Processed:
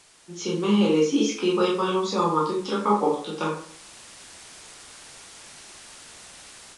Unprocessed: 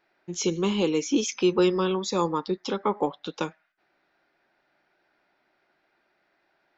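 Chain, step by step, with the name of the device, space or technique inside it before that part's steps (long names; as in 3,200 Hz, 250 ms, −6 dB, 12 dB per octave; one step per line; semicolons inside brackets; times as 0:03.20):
filmed off a television (band-pass filter 150–6,600 Hz; parametric band 1,200 Hz +6 dB 0.27 octaves; convolution reverb RT60 0.55 s, pre-delay 10 ms, DRR −4.5 dB; white noise bed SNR 21 dB; automatic gain control gain up to 10 dB; level −8.5 dB; AAC 96 kbit/s 22,050 Hz)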